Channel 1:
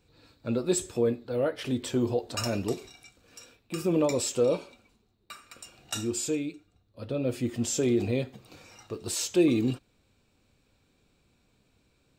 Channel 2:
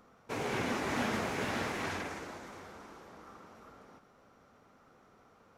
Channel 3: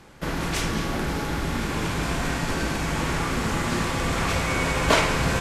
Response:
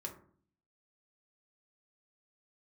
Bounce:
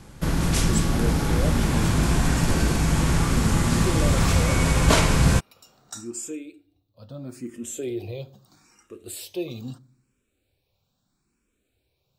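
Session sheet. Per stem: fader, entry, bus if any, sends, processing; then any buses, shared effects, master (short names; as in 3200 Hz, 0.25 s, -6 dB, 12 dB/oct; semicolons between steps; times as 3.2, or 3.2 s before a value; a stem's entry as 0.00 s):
-5.5 dB, 0.00 s, send -8 dB, endless phaser +0.77 Hz
-0.5 dB, 0.75 s, no send, LPF 3900 Hz 6 dB/oct
-1.5 dB, 0.00 s, no send, steep low-pass 12000 Hz 96 dB/oct; tone controls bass +10 dB, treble +3 dB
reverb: on, RT60 0.50 s, pre-delay 3 ms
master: bell 2100 Hz -2 dB; high shelf 10000 Hz +11 dB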